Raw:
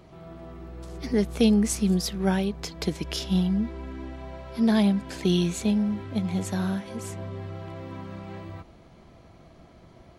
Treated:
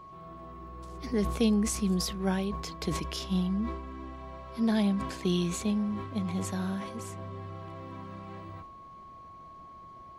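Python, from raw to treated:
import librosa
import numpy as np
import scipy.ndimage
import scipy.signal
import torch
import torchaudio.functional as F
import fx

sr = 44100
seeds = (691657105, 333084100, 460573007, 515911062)

y = x + 10.0 ** (-41.0 / 20.0) * np.sin(2.0 * np.pi * 1100.0 * np.arange(len(x)) / sr)
y = fx.sustainer(y, sr, db_per_s=58.0)
y = y * librosa.db_to_amplitude(-5.5)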